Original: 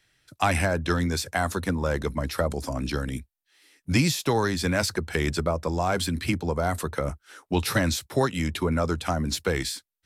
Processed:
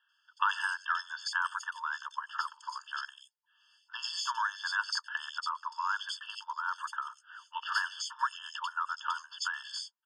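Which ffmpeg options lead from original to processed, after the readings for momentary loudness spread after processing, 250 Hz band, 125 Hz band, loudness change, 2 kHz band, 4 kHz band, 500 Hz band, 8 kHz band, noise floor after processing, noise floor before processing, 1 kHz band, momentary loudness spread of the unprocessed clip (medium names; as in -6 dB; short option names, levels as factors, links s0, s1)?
8 LU, under -40 dB, under -40 dB, -8.5 dB, -3.0 dB, -5.0 dB, under -40 dB, -11.5 dB, -75 dBFS, -76 dBFS, -3.5 dB, 6 LU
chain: -filter_complex "[0:a]lowpass=f=6200:w=0.5412,lowpass=f=6200:w=1.3066,acrossover=split=220|3100[s0][s1][s2];[s2]adelay=90[s3];[s0]adelay=760[s4];[s4][s1][s3]amix=inputs=3:normalize=0,afftfilt=real='re*eq(mod(floor(b*sr/1024/890),2),1)':imag='im*eq(mod(floor(b*sr/1024/890),2),1)':win_size=1024:overlap=0.75"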